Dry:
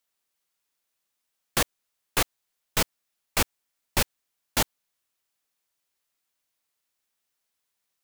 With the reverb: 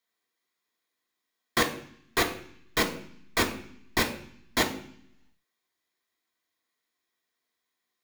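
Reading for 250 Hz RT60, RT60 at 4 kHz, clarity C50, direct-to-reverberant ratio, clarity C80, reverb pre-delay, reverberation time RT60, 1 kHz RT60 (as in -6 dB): 0.95 s, 0.80 s, 11.0 dB, 0.0 dB, 14.5 dB, 3 ms, 0.60 s, 0.60 s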